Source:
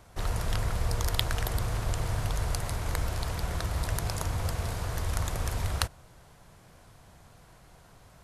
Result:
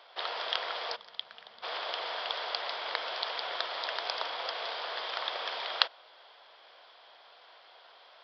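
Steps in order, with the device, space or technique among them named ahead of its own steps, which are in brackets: time-frequency box 0.96–1.63 s, 240–10000 Hz -19 dB; treble shelf 5.2 kHz +6 dB; musical greeting card (resampled via 11.025 kHz; high-pass 520 Hz 24 dB/octave; peaking EQ 3.3 kHz +10 dB 0.27 oct); trim +2.5 dB

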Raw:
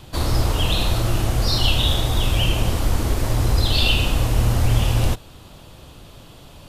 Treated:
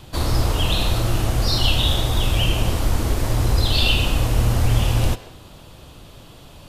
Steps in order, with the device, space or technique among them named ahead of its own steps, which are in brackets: filtered reverb send (on a send: high-pass 370 Hz + low-pass 5.9 kHz + reverberation RT60 0.60 s, pre-delay 112 ms, DRR 14 dB)

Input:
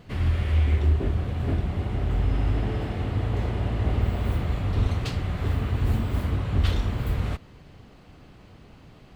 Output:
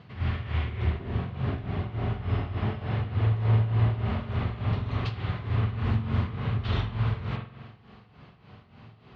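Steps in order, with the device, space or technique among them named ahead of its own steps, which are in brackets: combo amplifier with spring reverb and tremolo (spring tank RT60 1.2 s, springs 45 ms, chirp 35 ms, DRR 1.5 dB; tremolo 3.4 Hz, depth 72%; cabinet simulation 93–4600 Hz, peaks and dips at 110 Hz +6 dB, 300 Hz -8 dB, 530 Hz -5 dB, 1.1 kHz +3 dB)

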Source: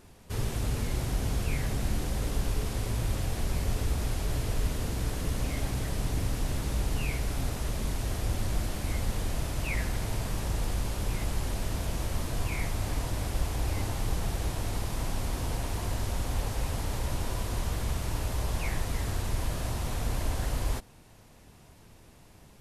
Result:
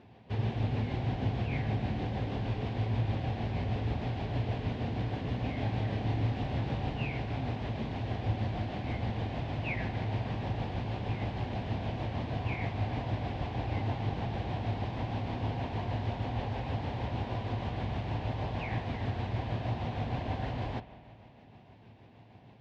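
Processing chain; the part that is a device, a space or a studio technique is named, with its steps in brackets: combo amplifier with spring reverb and tremolo (spring tank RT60 2.5 s, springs 53 ms, chirp 35 ms, DRR 13.5 dB; tremolo 6.4 Hz, depth 33%; cabinet simulation 100–3500 Hz, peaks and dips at 110 Hz +9 dB, 240 Hz +5 dB, 760 Hz +7 dB, 1.3 kHz -8 dB); 5.56–6.91 s: doubling 28 ms -5.5 dB

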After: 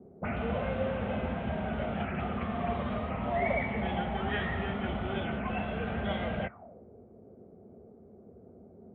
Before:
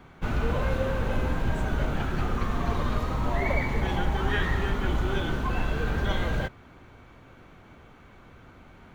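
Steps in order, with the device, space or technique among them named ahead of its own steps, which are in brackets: envelope filter bass rig (touch-sensitive low-pass 360–3400 Hz up, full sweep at -22.5 dBFS; cabinet simulation 73–2300 Hz, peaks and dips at 130 Hz -7 dB, 210 Hz +8 dB, 310 Hz -8 dB, 680 Hz +9 dB, 1 kHz -6 dB, 1.6 kHz -5 dB); trim -4 dB

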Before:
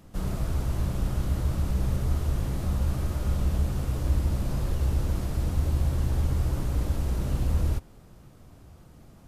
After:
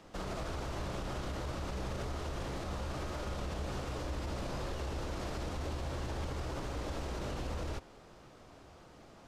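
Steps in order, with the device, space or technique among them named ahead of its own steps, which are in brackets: DJ mixer with the lows and highs turned down (three-band isolator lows -14 dB, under 320 Hz, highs -19 dB, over 7.1 kHz; peak limiter -33.5 dBFS, peak gain reduction 8.5 dB); trim +3.5 dB

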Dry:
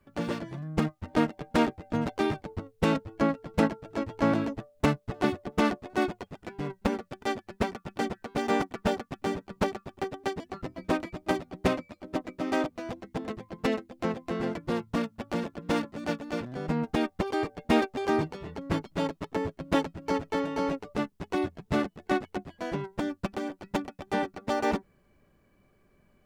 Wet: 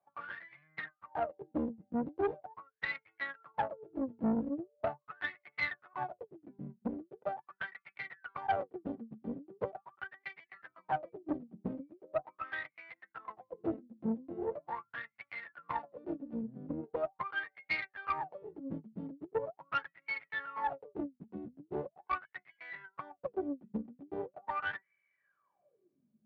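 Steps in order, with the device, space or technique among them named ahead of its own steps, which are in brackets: wah-wah guitar rig (wah-wah 0.41 Hz 220–2200 Hz, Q 19; valve stage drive 36 dB, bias 0.65; cabinet simulation 86–4600 Hz, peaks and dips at 140 Hz +7 dB, 250 Hz -8 dB, 410 Hz -3 dB); trim +13 dB

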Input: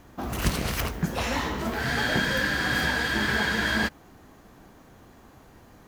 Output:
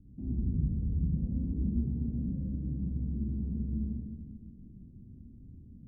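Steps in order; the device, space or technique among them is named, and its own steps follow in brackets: club heard from the street (peak limiter -22 dBFS, peak gain reduction 11 dB; low-pass 230 Hz 24 dB/octave; reverberation RT60 1.5 s, pre-delay 36 ms, DRR -3.5 dB); 2.05–2.86 s: treble shelf 2.8 kHz +11.5 dB; trim -1.5 dB

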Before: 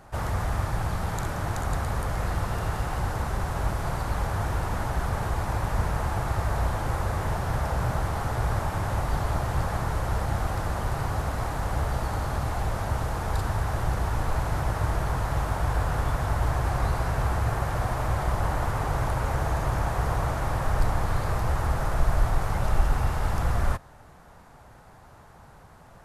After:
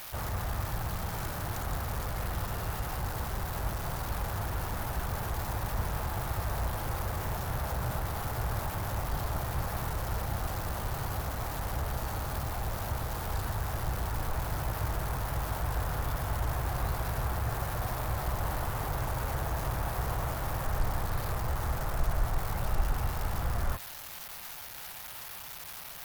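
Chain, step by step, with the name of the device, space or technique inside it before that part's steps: budget class-D amplifier (dead-time distortion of 0.075 ms; zero-crossing glitches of -19.5 dBFS); trim -6.5 dB

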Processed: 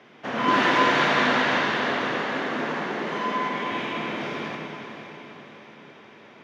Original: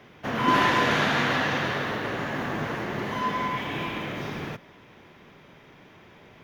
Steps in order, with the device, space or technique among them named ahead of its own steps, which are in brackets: supermarket ceiling speaker (band-pass 210–6600 Hz; reverberation RT60 1.4 s, pre-delay 46 ms, DRR 1.5 dB); 2.18–3.72 s: Chebyshev high-pass 160 Hz, order 4; echo that smears into a reverb 492 ms, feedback 49%, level -8.5 dB

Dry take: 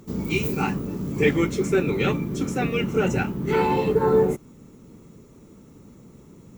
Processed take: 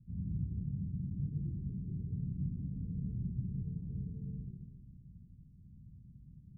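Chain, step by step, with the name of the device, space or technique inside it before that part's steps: club heard from the street (peak limiter -18.5 dBFS, peak gain reduction 11 dB; low-pass 140 Hz 24 dB/octave; reverberation RT60 1.1 s, pre-delay 74 ms, DRR -2 dB); trim -5 dB

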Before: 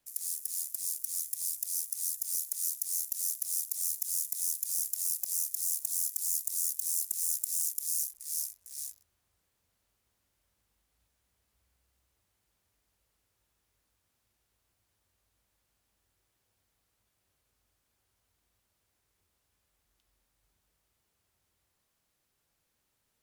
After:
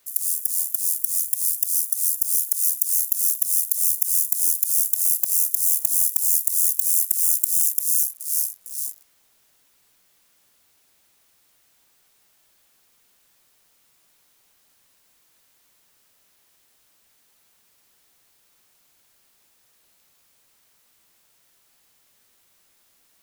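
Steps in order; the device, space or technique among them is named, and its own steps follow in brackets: turntable without a phono preamp (RIAA curve recording; white noise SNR 37 dB); trim -3 dB

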